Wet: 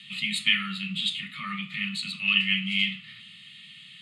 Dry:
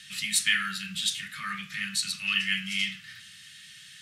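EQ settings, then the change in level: band-pass 270–4600 Hz; resonant low shelf 560 Hz +10 dB, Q 1.5; static phaser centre 1.6 kHz, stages 6; +5.5 dB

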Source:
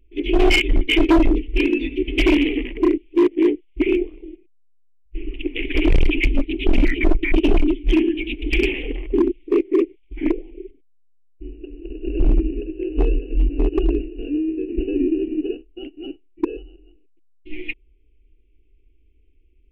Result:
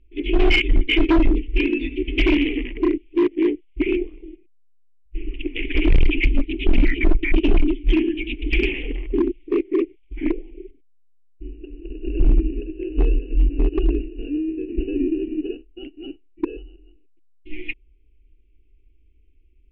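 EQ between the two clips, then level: low-pass 3.4 kHz 12 dB/octave; peaking EQ 620 Hz -6.5 dB 1.9 oct; +1.0 dB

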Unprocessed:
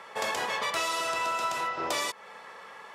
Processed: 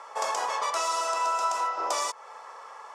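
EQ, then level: band-pass 710–7600 Hz; high-order bell 2.6 kHz -11.5 dB; +6.0 dB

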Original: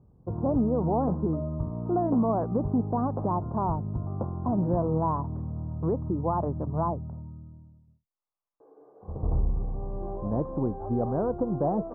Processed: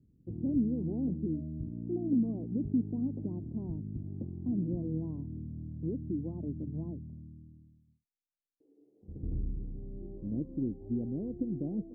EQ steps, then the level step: four-pole ladder low-pass 340 Hz, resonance 50%; 0.0 dB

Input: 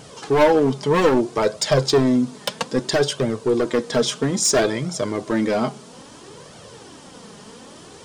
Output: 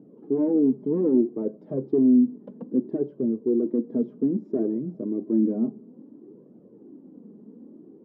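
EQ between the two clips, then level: Butterworth band-pass 270 Hz, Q 1.7; distance through air 82 m; +1.5 dB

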